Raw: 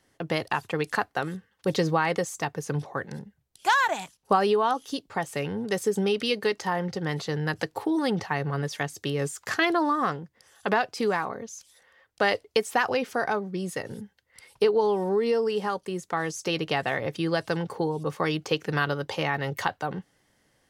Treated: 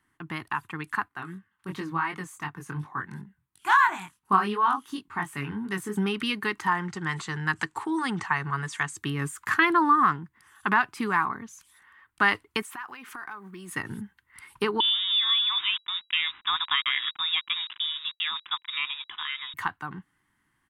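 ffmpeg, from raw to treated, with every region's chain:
-filter_complex "[0:a]asettb=1/sr,asplit=3[a][b][c];[a]atrim=end=1.084[d];[b]atrim=start=1.08:end=5.97,asetpts=PTS-STARTPTS,afade=t=in:d=0.004:c=qsin,afade=t=out:st=4.886:d=0.004:c=qsin,highpass=45,flanger=delay=20:depth=4.2:speed=2.8[e];[c]atrim=start=5.966[f];[d][e]acrossfade=d=0.004:c1=hsin:c2=qsin[g];[g][f]acrossfade=d=0.004:c1=qsin:c2=hsin,asettb=1/sr,asplit=3[h][i][j];[h]atrim=end=6.674[k];[i]atrim=start=6.67:end=8.97,asetpts=PTS-STARTPTS,afade=t=in:d=0.004:c=qsin,afade=t=out:st=2.296:d=0.004:c=qsin,lowpass=f=7.7k:t=q:w=3.2,lowshelf=f=160:g=-8,bandreject=f=290:w=6.7[l];[j]atrim=start=8.966[m];[k][l]acrossfade=d=0.004:c1=hsin:c2=qsin[n];[n][m]acrossfade=d=0.004:c1=qsin:c2=hsin,asettb=1/sr,asplit=3[o][p][q];[o]atrim=end=12.624[r];[p]atrim=start=12.62:end=13.71,asetpts=PTS-STARTPTS,afade=t=in:d=0.004:c=qsin,afade=t=out:st=1.086:d=0.004:c=qsin,highpass=f=580:p=1,acompressor=threshold=-38dB:ratio=8:attack=3.2:release=140:knee=1:detection=peak,acrusher=bits=9:mode=log:mix=0:aa=0.000001[s];[q]atrim=start=13.706[t];[r][s]acrossfade=d=0.004:c1=hsin:c2=qsin[u];[u][t]acrossfade=d=0.004:c1=qsin:c2=hsin,asettb=1/sr,asplit=3[v][w][x];[v]atrim=end=14.804[y];[w]atrim=start=14.8:end=19.54,asetpts=PTS-STARTPTS,afade=t=in:d=0.004:c=qsin,afade=t=out:st=4.736:d=0.004:c=qsin,aeval=exprs='val(0)*gte(abs(val(0)),0.0178)':c=same,highshelf=f=2.8k:g=-10,lowpass=f=3.3k:t=q:w=0.5098,lowpass=f=3.3k:t=q:w=0.6013,lowpass=f=3.3k:t=q:w=0.9,lowpass=f=3.3k:t=q:w=2.563,afreqshift=-3900[z];[x]atrim=start=19.536[aa];[y][z]acrossfade=d=0.004:c1=hsin:c2=qsin[ab];[ab][aa]acrossfade=d=0.004:c1=qsin:c2=hsin,firequalizer=gain_entry='entry(340,0);entry(510,-22);entry(1000,7);entry(5200,-12);entry(8700,-1)':delay=0.05:min_phase=1,dynaudnorm=f=250:g=21:m=11.5dB,volume=-5.5dB"

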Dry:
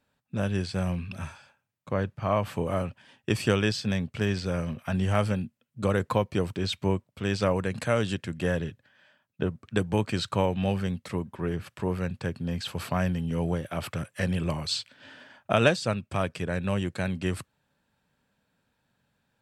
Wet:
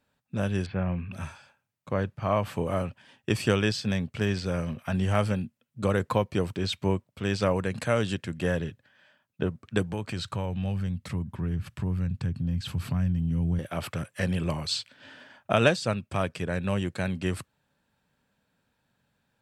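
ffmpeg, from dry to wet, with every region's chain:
-filter_complex "[0:a]asettb=1/sr,asplit=3[a][b][c];[a]atrim=end=0.664[d];[b]atrim=start=0.66:end=1.13,asetpts=PTS-STARTPTS,afade=t=in:d=0.004:c=qsin,afade=t=out:st=0.466:d=0.004:c=qsin,lowpass=f=2.5k:w=0.5412,lowpass=f=2.5k:w=1.3066,acompressor=mode=upward:threshold=-36dB:ratio=2.5:attack=3.2:release=140:knee=2.83:detection=peak[e];[c]atrim=start=1.126[f];[d][e]acrossfade=d=0.004:c1=hsin:c2=qsin[g];[g][f]acrossfade=d=0.004:c1=qsin:c2=hsin,asettb=1/sr,asplit=3[h][i][j];[h]atrim=end=9.914[k];[i]atrim=start=9.91:end=13.59,asetpts=PTS-STARTPTS,afade=t=in:d=0.004:c=qsin,afade=t=out:st=3.676:d=0.004:c=qsin,asubboost=boost=11:cutoff=180,acompressor=threshold=-32dB:ratio=2:attack=3.2:release=140:knee=1:detection=peak[l];[j]atrim=start=13.586[m];[k][l]acrossfade=d=0.004:c1=hsin:c2=qsin[n];[n][m]acrossfade=d=0.004:c1=qsin:c2=hsin"

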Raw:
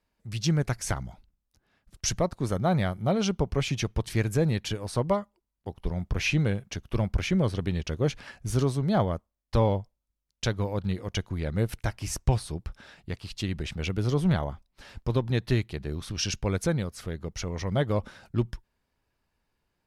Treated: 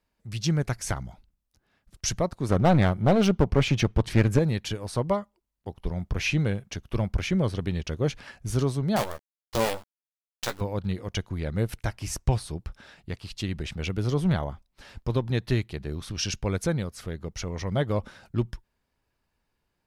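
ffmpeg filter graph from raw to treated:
-filter_complex "[0:a]asettb=1/sr,asplit=3[a][b][c];[a]atrim=end=2.494[d];[b]atrim=start=2.49:end=4.39,asetpts=PTS-STARTPTS,afade=t=in:d=0.004:c=qsin,afade=t=out:st=1.896:d=0.004:c=qsin,lowpass=f=2.8k:p=1,acontrast=79,aeval=exprs='clip(val(0),-1,0.075)':c=same[e];[c]atrim=start=4.386[f];[d][e]acrossfade=d=0.004:c1=hsin:c2=qsin[g];[g][f]acrossfade=d=0.004:c1=qsin:c2=hsin,asettb=1/sr,asplit=3[h][i][j];[h]atrim=end=8.964[k];[i]atrim=start=8.96:end=10.61,asetpts=PTS-STARTPTS,afade=t=in:d=0.004:c=qsin,afade=t=out:st=1.646:d=0.004:c=qsin,lowshelf=f=260:g=-11.5,acrusher=bits=5:dc=4:mix=0:aa=0.000001,asplit=2[l][m];[m]adelay=14,volume=-7dB[n];[l][n]amix=inputs=2:normalize=0,atrim=end_sample=72765[o];[j]atrim=start=10.606[p];[k][o]acrossfade=d=0.004:c1=hsin:c2=qsin[q];[q][p]acrossfade=d=0.004:c1=qsin:c2=hsin"

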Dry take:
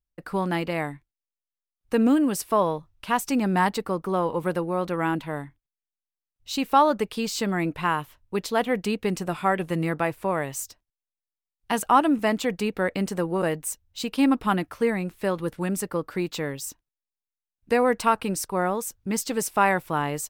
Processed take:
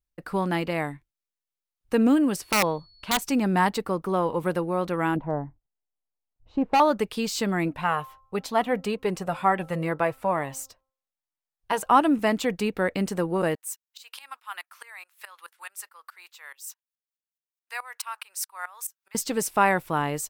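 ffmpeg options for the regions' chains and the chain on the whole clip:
-filter_complex "[0:a]asettb=1/sr,asplit=3[a][b][c];[a]atrim=end=2.364[d];[b]atrim=start=2.36:end=3.22,asetpts=PTS-STARTPTS,afade=t=in:d=0.004:c=qsin,afade=t=out:st=0.856:d=0.004:c=qsin,highshelf=f=6.3k:g=-11,aeval=exprs='(mod(5.31*val(0)+1,2)-1)/5.31':c=same,aeval=exprs='val(0)+0.00178*sin(2*PI*4400*n/s)':c=same[e];[c]atrim=start=3.216[f];[d][e]acrossfade=d=0.004:c1=hsin:c2=qsin[g];[g][f]acrossfade=d=0.004:c1=qsin:c2=hsin,asettb=1/sr,asplit=3[h][i][j];[h]atrim=end=5.164[k];[i]atrim=start=5.16:end=6.8,asetpts=PTS-STARTPTS,afade=t=in:d=0.004:c=qsin,afade=t=out:st=1.636:d=0.004:c=qsin,lowpass=f=780:t=q:w=1.8,lowshelf=f=130:g=7,asoftclip=type=hard:threshold=-16.5dB[l];[j]atrim=start=6.796[m];[k][l]acrossfade=d=0.004:c1=hsin:c2=qsin[n];[n][m]acrossfade=d=0.004:c1=qsin:c2=hsin,asettb=1/sr,asplit=3[o][p][q];[o]atrim=end=7.684[r];[p]atrim=start=7.68:end=11.91,asetpts=PTS-STARTPTS,afade=t=in:d=0.004:c=qsin,afade=t=out:st=4.226:d=0.004:c=qsin,equalizer=f=800:w=0.55:g=6,bandreject=f=264.2:t=h:w=4,bandreject=f=528.4:t=h:w=4,bandreject=f=792.6:t=h:w=4,bandreject=f=1.0568k:t=h:w=4,bandreject=f=1.321k:t=h:w=4,flanger=delay=0.9:depth=1.2:regen=-46:speed=1.1:shape=triangular[s];[q]atrim=start=11.906[t];[r][s]acrossfade=d=0.004:c1=hsin:c2=qsin[u];[u][t]acrossfade=d=0.004:c1=qsin:c2=hsin,asettb=1/sr,asplit=3[v][w][x];[v]atrim=end=13.554[y];[w]atrim=start=13.55:end=19.15,asetpts=PTS-STARTPTS,afade=t=in:d=0.004:c=qsin,afade=t=out:st=5.596:d=0.004:c=qsin,highpass=f=1k:w=0.5412,highpass=f=1k:w=1.3066,highshelf=f=10k:g=7,aeval=exprs='val(0)*pow(10,-20*if(lt(mod(-4.7*n/s,1),2*abs(-4.7)/1000),1-mod(-4.7*n/s,1)/(2*abs(-4.7)/1000),(mod(-4.7*n/s,1)-2*abs(-4.7)/1000)/(1-2*abs(-4.7)/1000))/20)':c=same[z];[x]atrim=start=19.146[aa];[y][z]acrossfade=d=0.004:c1=hsin:c2=qsin[ab];[ab][aa]acrossfade=d=0.004:c1=qsin:c2=hsin"

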